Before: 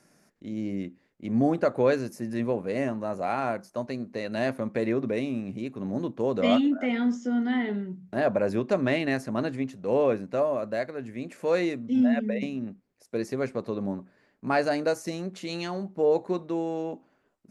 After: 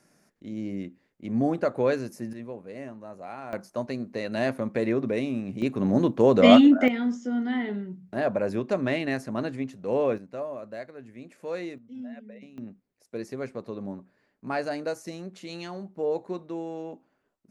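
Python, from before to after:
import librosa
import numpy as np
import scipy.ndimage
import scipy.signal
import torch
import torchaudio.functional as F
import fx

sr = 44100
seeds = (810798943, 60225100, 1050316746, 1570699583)

y = fx.gain(x, sr, db=fx.steps((0.0, -1.5), (2.33, -11.0), (3.53, 1.0), (5.62, 8.0), (6.88, -1.5), (10.18, -8.5), (11.78, -17.0), (12.58, -5.0)))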